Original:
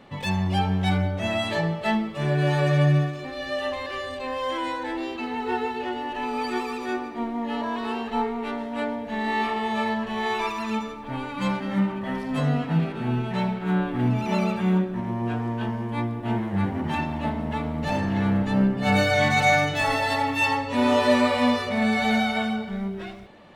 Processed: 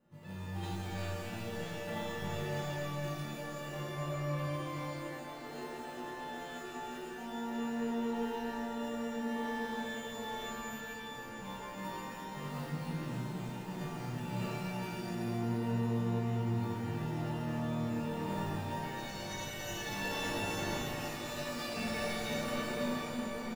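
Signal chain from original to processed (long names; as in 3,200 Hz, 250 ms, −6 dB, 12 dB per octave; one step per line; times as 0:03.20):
parametric band 6,200 Hz +14 dB 1.2 octaves
noise gate −20 dBFS, range −12 dB
low-pass that shuts in the quiet parts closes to 1,100 Hz, open at −16.5 dBFS
in parallel at −4 dB: decimation without filtering 39×
on the sum: resonators tuned to a chord A#2 sus4, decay 0.4 s
slap from a distant wall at 230 metres, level −10 dB
compressor whose output falls as the input rises −45 dBFS, ratio −1
reverb with rising layers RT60 3.4 s, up +12 semitones, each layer −8 dB, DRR −7.5 dB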